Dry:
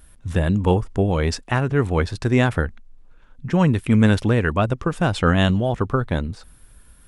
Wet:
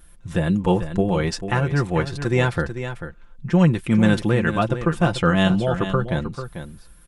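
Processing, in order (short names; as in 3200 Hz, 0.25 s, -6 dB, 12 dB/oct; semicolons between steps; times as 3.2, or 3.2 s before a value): comb 5.8 ms, depth 64%; on a send: echo 0.442 s -10 dB; on the sum: gain -2 dB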